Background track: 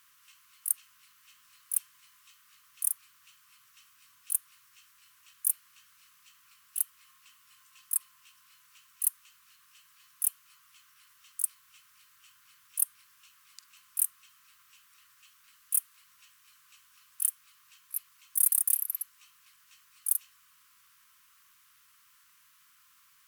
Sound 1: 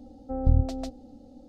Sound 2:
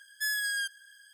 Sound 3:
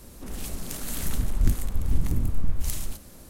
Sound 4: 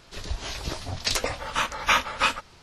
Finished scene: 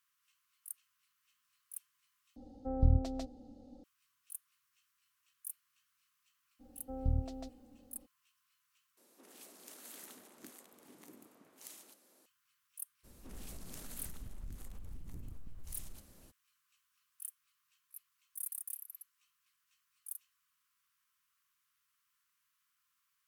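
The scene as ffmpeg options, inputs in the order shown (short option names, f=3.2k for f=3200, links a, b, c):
-filter_complex "[1:a]asplit=2[a][b];[3:a]asplit=2[c][d];[0:a]volume=-17.5dB[e];[c]highpass=f=290:w=0.5412,highpass=f=290:w=1.3066[f];[d]acompressor=threshold=-28dB:ratio=6:attack=3.2:release=140:knee=1:detection=peak[g];[e]asplit=3[h][i][j];[h]atrim=end=2.364[k];[a]atrim=end=1.48,asetpts=PTS-STARTPTS,volume=-6dB[l];[i]atrim=start=3.836:end=8.974[m];[f]atrim=end=3.29,asetpts=PTS-STARTPTS,volume=-16.5dB[n];[j]atrim=start=12.256[o];[b]atrim=end=1.48,asetpts=PTS-STARTPTS,volume=-11.5dB,afade=t=in:d=0.02,afade=t=out:st=1.46:d=0.02,adelay=6590[p];[g]atrim=end=3.29,asetpts=PTS-STARTPTS,volume=-13dB,afade=t=in:d=0.02,afade=t=out:st=3.27:d=0.02,adelay=13030[q];[k][l]acrossfade=d=0.004:c1=hsin:c2=hsin[r];[r][m]acrossfade=d=0.004:c1=hsin:c2=hsin[s];[s][n]acrossfade=d=0.004:c1=hsin:c2=hsin[t];[t][o]acrossfade=d=0.004:c1=hsin:c2=hsin[u];[u][p][q]amix=inputs=3:normalize=0"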